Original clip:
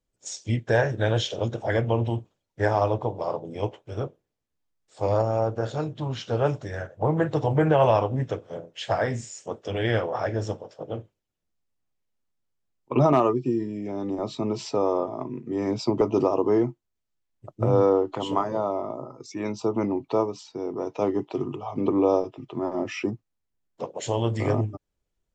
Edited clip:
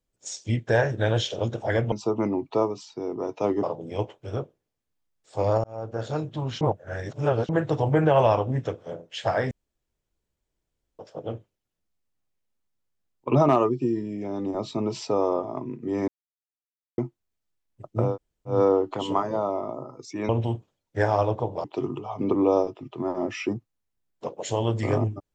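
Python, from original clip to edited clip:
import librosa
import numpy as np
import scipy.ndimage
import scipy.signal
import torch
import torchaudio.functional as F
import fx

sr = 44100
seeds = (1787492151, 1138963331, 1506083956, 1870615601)

y = fx.edit(x, sr, fx.swap(start_s=1.92, length_s=1.35, other_s=19.5, other_length_s=1.71),
    fx.fade_in_span(start_s=5.28, length_s=0.47),
    fx.reverse_span(start_s=6.25, length_s=0.88),
    fx.room_tone_fill(start_s=9.15, length_s=1.48),
    fx.silence(start_s=15.72, length_s=0.9),
    fx.insert_room_tone(at_s=17.74, length_s=0.43, crossfade_s=0.16), tone=tone)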